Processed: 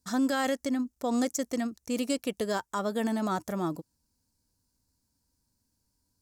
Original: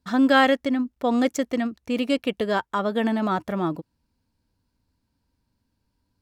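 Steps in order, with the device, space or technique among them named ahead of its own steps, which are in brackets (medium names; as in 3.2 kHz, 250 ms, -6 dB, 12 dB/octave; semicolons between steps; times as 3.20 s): over-bright horn tweeter (resonant high shelf 4.5 kHz +13 dB, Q 1.5; peak limiter -14 dBFS, peak gain reduction 9.5 dB); trim -5.5 dB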